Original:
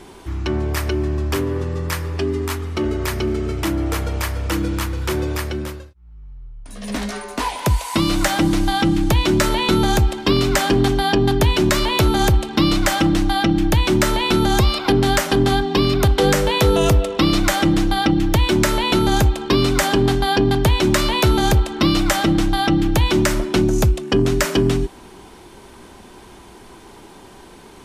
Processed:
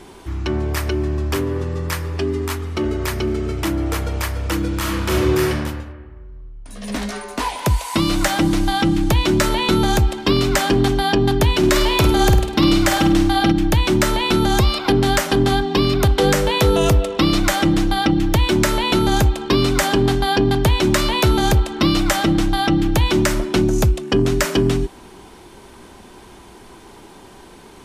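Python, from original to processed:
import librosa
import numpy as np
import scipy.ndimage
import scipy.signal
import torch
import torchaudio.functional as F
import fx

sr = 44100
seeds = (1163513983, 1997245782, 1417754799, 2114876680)

y = fx.reverb_throw(x, sr, start_s=4.78, length_s=0.73, rt60_s=1.4, drr_db=-3.5)
y = fx.room_flutter(y, sr, wall_m=8.8, rt60_s=0.43, at=(11.58, 13.52))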